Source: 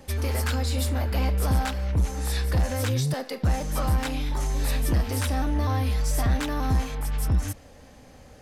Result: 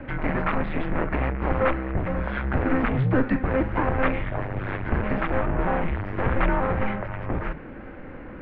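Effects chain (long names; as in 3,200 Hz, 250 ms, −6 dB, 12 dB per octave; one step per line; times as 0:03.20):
harmonic generator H 5 −13 dB, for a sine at −16.5 dBFS
mains-hum notches 50/100/150 Hz
single-sideband voice off tune −260 Hz 160–2,500 Hz
level +7 dB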